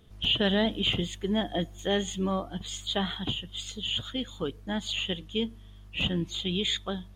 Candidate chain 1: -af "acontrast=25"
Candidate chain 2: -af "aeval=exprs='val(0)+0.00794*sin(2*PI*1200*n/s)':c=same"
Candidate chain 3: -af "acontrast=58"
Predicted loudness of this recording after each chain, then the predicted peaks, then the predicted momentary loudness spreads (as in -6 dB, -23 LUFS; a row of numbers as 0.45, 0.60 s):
-25.0, -29.5, -23.5 LUFS; -10.0, -14.5, -9.0 dBFS; 9, 9, 9 LU